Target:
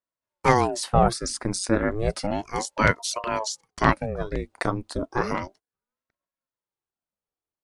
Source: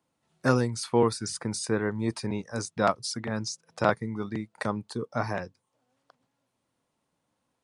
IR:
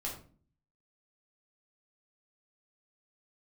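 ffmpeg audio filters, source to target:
-af "agate=range=0.0708:threshold=0.00316:ratio=16:detection=peak,aeval=exprs='val(0)*sin(2*PI*460*n/s+460*0.8/0.32*sin(2*PI*0.32*n/s))':c=same,volume=2.24"

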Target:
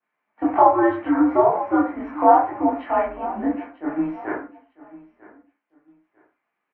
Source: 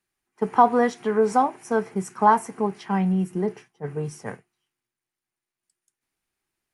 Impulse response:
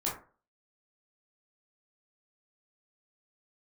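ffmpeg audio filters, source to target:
-filter_complex "[0:a]aecho=1:1:947|1894:0.1|0.026,acompressor=threshold=0.1:ratio=4,highpass=f=450:t=q:w=0.5412,highpass=f=450:t=q:w=1.307,lowpass=f=2800:t=q:w=0.5176,lowpass=f=2800:t=q:w=0.7071,lowpass=f=2800:t=q:w=1.932,afreqshift=-140[s0];[1:a]atrim=start_sample=2205,afade=t=out:st=0.22:d=0.01,atrim=end_sample=10143[s1];[s0][s1]afir=irnorm=-1:irlink=0,adynamicequalizer=threshold=0.0112:dfrequency=2100:dqfactor=0.7:tfrequency=2100:tqfactor=0.7:attack=5:release=100:ratio=0.375:range=3:mode=cutabove:tftype=highshelf,volume=1.58"

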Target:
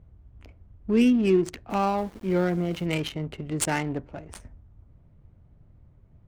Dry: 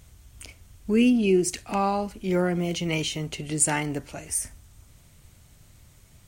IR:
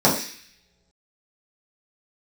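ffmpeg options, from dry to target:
-filter_complex "[0:a]adynamicsmooth=sensitivity=3:basefreq=760,asettb=1/sr,asplit=3[s0][s1][s2];[s0]atrim=end=1.704[s3];[s1]atrim=start=1.7:end=2.86,asetpts=PTS-STARTPTS,afade=t=in:d=0.004:c=qsin,afade=t=out:st=1.156:d=0.004:c=qsin,aeval=exprs='val(0)*gte(abs(val(0)),0.00631)':c=same[s4];[s2]atrim=start=2.856[s5];[s3][s4]acrossfade=d=0.004:c1=hsin:c2=qsin[s6];[s6][s5]acrossfade=d=0.004:c1=qsin:c2=hsin"

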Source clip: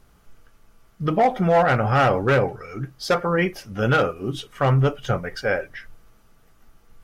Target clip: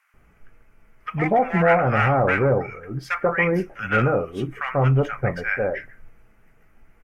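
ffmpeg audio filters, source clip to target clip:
-filter_complex "[0:a]highshelf=f=2900:t=q:w=3:g=-8.5,acrossover=split=1100[s0][s1];[s0]adelay=140[s2];[s2][s1]amix=inputs=2:normalize=0"

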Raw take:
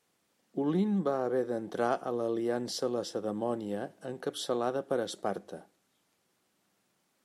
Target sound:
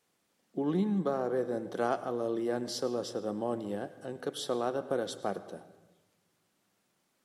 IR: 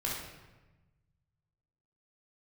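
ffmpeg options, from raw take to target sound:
-filter_complex "[0:a]asplit=2[s0][s1];[1:a]atrim=start_sample=2205,adelay=99[s2];[s1][s2]afir=irnorm=-1:irlink=0,volume=0.112[s3];[s0][s3]amix=inputs=2:normalize=0,volume=0.891"

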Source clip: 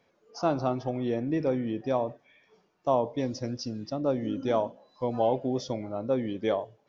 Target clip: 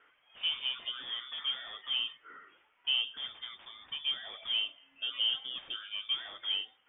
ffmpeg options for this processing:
-filter_complex "[0:a]lowshelf=f=390:t=q:w=1.5:g=-9,acrossover=split=530|1700[s0][s1][s2];[s2]aeval=exprs='0.015*sin(PI/2*7.08*val(0)/0.015)':c=same[s3];[s0][s1][s3]amix=inputs=3:normalize=0,lowpass=f=3100:t=q:w=0.5098,lowpass=f=3100:t=q:w=0.6013,lowpass=f=3100:t=q:w=0.9,lowpass=f=3100:t=q:w=2.563,afreqshift=-3700,volume=0.422"

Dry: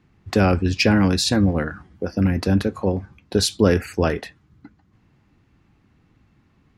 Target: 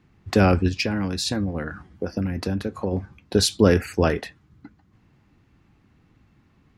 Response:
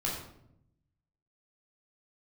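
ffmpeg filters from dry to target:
-filter_complex "[0:a]asplit=3[s0][s1][s2];[s0]afade=t=out:st=0.68:d=0.02[s3];[s1]acompressor=threshold=0.0794:ratio=6,afade=t=in:st=0.68:d=0.02,afade=t=out:st=2.91:d=0.02[s4];[s2]afade=t=in:st=2.91:d=0.02[s5];[s3][s4][s5]amix=inputs=3:normalize=0"

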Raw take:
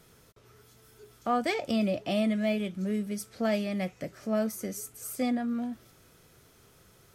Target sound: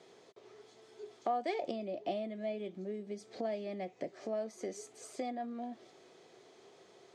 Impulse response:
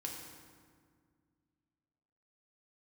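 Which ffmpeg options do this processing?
-filter_complex "[0:a]asettb=1/sr,asplit=3[s0][s1][s2];[s0]atrim=end=1.604[s3];[s1]atrim=start=1.6:end=4.1,asetpts=PTS-STARTPTS,afade=t=in:d=0.004:c=qsin,afade=t=out:st=2.496:d=0.004:c=qsin,lowshelf=f=440:g=7[s4];[s2]atrim=start=4.096[s5];[s3][s4]acrossfade=d=0.004:c1=hsin:c2=qsin[s6];[s6][s5]acrossfade=d=0.004:c1=qsin:c2=hsin,acompressor=threshold=0.0158:ratio=8,highpass=330,equalizer=f=380:t=q:w=4:g=8,equalizer=f=720:t=q:w=4:g=7,equalizer=f=1400:t=q:w=4:g=-10,equalizer=f=2700:t=q:w=4:g=-4,equalizer=f=5500:t=q:w=4:g=-6,lowpass=f=6300:w=0.5412,lowpass=f=6300:w=1.3066,volume=1.19"

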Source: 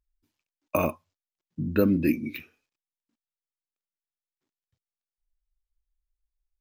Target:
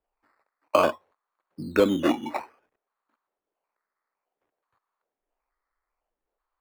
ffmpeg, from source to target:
-filter_complex "[0:a]lowpass=f=4400:t=q:w=12,acrusher=samples=11:mix=1:aa=0.000001:lfo=1:lforange=6.6:lforate=0.57,acrossover=split=330 2600:gain=0.141 1 0.178[s0][s1][s2];[s0][s1][s2]amix=inputs=3:normalize=0,volume=2.11"

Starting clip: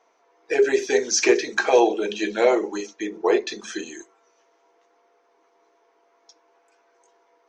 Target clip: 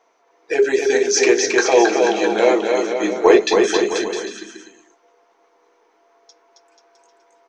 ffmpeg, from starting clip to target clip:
-filter_complex "[0:a]asettb=1/sr,asplit=3[s0][s1][s2];[s0]atrim=end=3.034[s3];[s1]atrim=start=3.03:end=3.77,asetpts=PTS-STARTPTS,afade=t=in:d=0.004:c=qsin,afade=t=out:st=0.736:d=0.004:c=qsin,acontrast=70[s4];[s2]atrim=start=3.766[s5];[s3][s4]acrossfade=d=0.004:c1=hsin:c2=qsin[s6];[s6][s5]acrossfade=d=0.004:c1=qsin:c2=hsin,aecho=1:1:270|486|658.8|797|907.6:0.631|0.398|0.251|0.158|0.1,volume=1.33"

